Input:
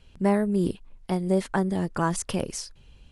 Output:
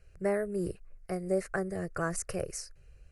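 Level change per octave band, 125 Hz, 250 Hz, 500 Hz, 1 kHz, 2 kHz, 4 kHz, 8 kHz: −10.5, −11.5, −4.0, −10.0, −3.0, −10.5, −4.5 decibels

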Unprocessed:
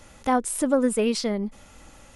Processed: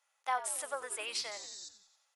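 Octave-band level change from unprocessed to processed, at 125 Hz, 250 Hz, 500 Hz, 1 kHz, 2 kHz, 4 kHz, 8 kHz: can't be measured, −40.0 dB, −20.0 dB, −9.0 dB, −5.5 dB, −4.5 dB, −6.5 dB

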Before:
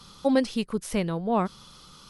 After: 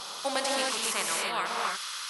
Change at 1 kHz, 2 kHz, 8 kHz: +1.0, +7.5, +12.0 decibels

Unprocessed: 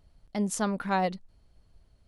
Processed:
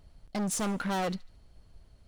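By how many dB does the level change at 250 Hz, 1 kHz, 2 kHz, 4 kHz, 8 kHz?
−2.0, −4.5, −2.5, +2.0, +2.0 decibels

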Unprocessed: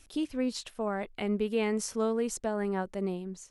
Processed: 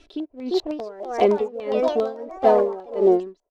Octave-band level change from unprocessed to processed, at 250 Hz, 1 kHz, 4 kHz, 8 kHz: +4.5 dB, +13.0 dB, +4.0 dB, below −10 dB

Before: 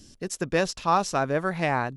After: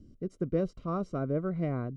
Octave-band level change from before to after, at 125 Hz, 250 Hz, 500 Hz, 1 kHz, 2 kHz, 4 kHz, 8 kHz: −0.5 dB, −1.5 dB, −6.0 dB, −16.5 dB, −20.5 dB, below −25 dB, below −30 dB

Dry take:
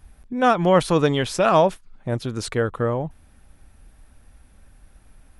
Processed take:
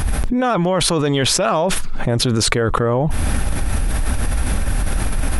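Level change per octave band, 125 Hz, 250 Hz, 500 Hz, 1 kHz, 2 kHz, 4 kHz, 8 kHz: +7.5, +4.5, +1.0, +0.5, +5.0, +11.5, +15.5 decibels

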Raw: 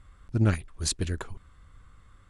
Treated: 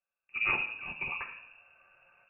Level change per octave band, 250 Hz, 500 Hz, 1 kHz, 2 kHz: −21.0, −12.5, +2.0, +10.0 decibels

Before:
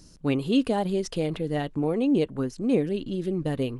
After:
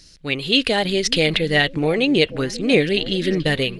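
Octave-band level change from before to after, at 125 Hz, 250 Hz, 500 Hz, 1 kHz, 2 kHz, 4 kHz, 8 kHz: +5.0, +3.0, +7.0, +6.0, +19.5, +19.5, +13.5 decibels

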